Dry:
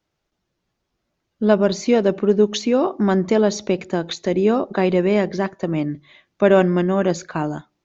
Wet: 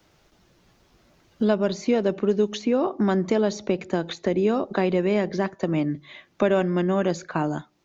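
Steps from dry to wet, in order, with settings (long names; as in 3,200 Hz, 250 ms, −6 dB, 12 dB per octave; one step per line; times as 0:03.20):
multiband upward and downward compressor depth 70%
level −5 dB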